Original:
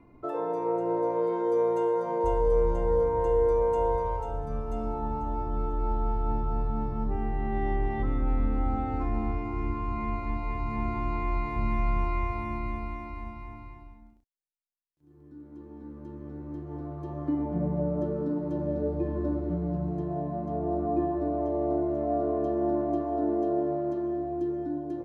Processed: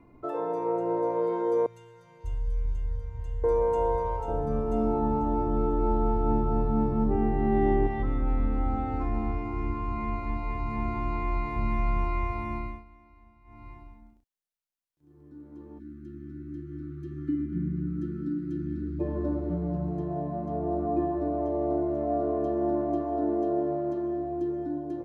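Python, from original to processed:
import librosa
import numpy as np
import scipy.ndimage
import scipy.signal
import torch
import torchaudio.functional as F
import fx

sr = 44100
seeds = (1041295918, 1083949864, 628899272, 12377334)

y = fx.curve_eq(x, sr, hz=(110.0, 220.0, 770.0, 1400.0, 2500.0), db=(0, -25, -29, -17, -5), at=(1.66, 3.44))
y = fx.peak_eq(y, sr, hz=300.0, db=9.5, octaves=2.4, at=(4.28, 7.87))
y = fx.cheby1_bandstop(y, sr, low_hz=370.0, high_hz=1300.0, order=5, at=(15.78, 18.99), fade=0.02)
y = fx.edit(y, sr, fx.fade_down_up(start_s=12.58, length_s=1.12, db=-18.0, fade_s=0.26), tone=tone)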